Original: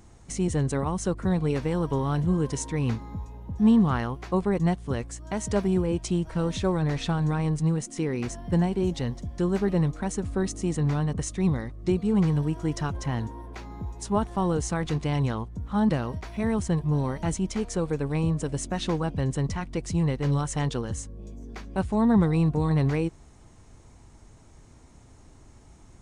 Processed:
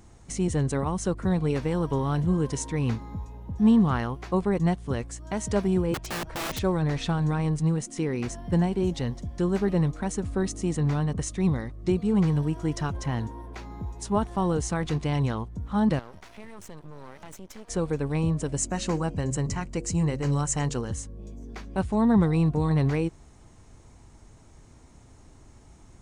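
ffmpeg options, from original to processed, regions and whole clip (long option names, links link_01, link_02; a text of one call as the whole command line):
ffmpeg -i in.wav -filter_complex "[0:a]asettb=1/sr,asplit=3[link_01][link_02][link_03];[link_01]atrim=end=5.944[link_04];[link_02]atrim=start=5.94:end=6.59,asetpts=PTS-STARTPTS,afade=type=in:duration=0.004:curve=qsin,afade=type=out:start_time=0.646:duration=0.004:curve=qsin,lowpass=frequency=3700:poles=1,aeval=exprs='(mod(21.1*val(0)+1,2)-1)/21.1':channel_layout=same[link_05];[link_03]atrim=start=6.586[link_06];[link_04][link_05]acrossfade=duration=0.004:curve1=hsin:curve2=qsin[link_07];[link_07][link_06]acrossfade=duration=0.004:curve1=qsin:curve2=hsin,asettb=1/sr,asplit=3[link_08][link_09][link_10];[link_08]atrim=end=15.994[link_11];[link_09]atrim=start=15.99:end=17.69,asetpts=PTS-STARTPTS,afade=type=in:duration=0.004:curve=qsin,afade=type=out:start_time=1.696:duration=0.004:curve=qsin,highpass=frequency=330:poles=1,acompressor=threshold=-37dB:ratio=4:attack=3.2:release=140:knee=1:detection=peak,aeval=exprs='max(val(0),0)':channel_layout=same[link_12];[link_10]atrim=start=17.686[link_13];[link_11][link_12]acrossfade=duration=0.004:curve1=hsin:curve2=qsin[link_14];[link_14][link_13]acrossfade=duration=0.004:curve1=qsin:curve2=hsin,asettb=1/sr,asplit=3[link_15][link_16][link_17];[link_15]atrim=end=18.564[link_18];[link_16]atrim=start=18.56:end=20.88,asetpts=PTS-STARTPTS,afade=type=in:duration=0.004:curve=qsin,afade=type=out:start_time=2.316:duration=0.004:curve=qsin,equalizer=frequency=7300:width_type=o:width=0.47:gain=10,bandreject=frequency=3500:width=5.7,bandreject=frequency=68.39:width_type=h:width=4,bandreject=frequency=136.78:width_type=h:width=4,bandreject=frequency=205.17:width_type=h:width=4,bandreject=frequency=273.56:width_type=h:width=4,bandreject=frequency=341.95:width_type=h:width=4,bandreject=frequency=410.34:width_type=h:width=4,bandreject=frequency=478.73:width_type=h:width=4,bandreject=frequency=547.12:width_type=h:width=4,bandreject=frequency=615.51:width_type=h:width=4[link_19];[link_17]atrim=start=20.876[link_20];[link_18][link_19]acrossfade=duration=0.004:curve1=hsin:curve2=qsin[link_21];[link_21][link_20]acrossfade=duration=0.004:curve1=qsin:curve2=hsin" out.wav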